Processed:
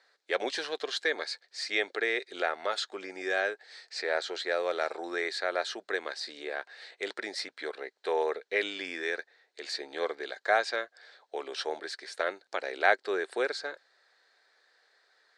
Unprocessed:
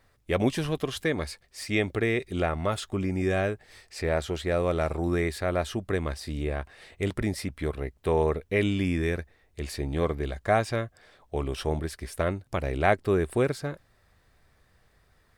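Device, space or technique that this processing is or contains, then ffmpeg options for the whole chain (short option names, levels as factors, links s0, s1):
phone speaker on a table: -af "highpass=f=460:w=0.5412,highpass=f=460:w=1.3066,equalizer=f=610:t=q:w=4:g=-4,equalizer=f=1100:t=q:w=4:g=-6,equalizer=f=1600:t=q:w=4:g=6,equalizer=f=2700:t=q:w=4:g=-4,equalizer=f=4200:t=q:w=4:g=10,lowpass=f=7200:w=0.5412,lowpass=f=7200:w=1.3066"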